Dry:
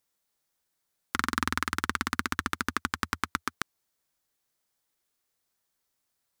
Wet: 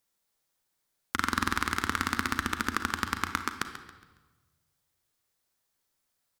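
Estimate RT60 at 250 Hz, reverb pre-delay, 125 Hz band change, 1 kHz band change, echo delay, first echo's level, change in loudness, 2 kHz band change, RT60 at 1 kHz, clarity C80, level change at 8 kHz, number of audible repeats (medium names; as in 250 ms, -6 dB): 1.3 s, 34 ms, +1.5 dB, +1.0 dB, 138 ms, -12.5 dB, +1.0 dB, +1.0 dB, 1.2 s, 9.0 dB, +0.5 dB, 3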